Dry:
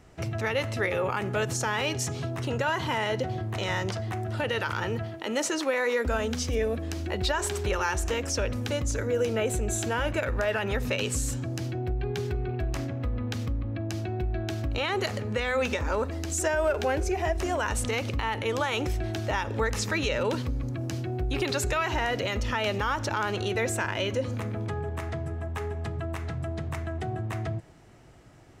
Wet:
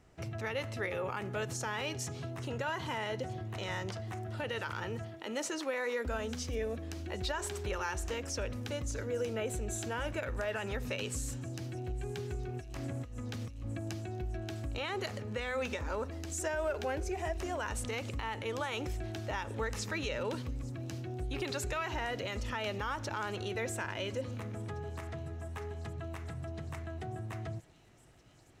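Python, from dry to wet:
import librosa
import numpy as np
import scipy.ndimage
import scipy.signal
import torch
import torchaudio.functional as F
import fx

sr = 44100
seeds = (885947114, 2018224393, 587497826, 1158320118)

p1 = fx.over_compress(x, sr, threshold_db=-32.0, ratio=-0.5, at=(12.54, 13.96), fade=0.02)
p2 = p1 + fx.echo_wet_highpass(p1, sr, ms=858, feedback_pct=84, hz=3900.0, wet_db=-20.5, dry=0)
y = p2 * librosa.db_to_amplitude(-8.5)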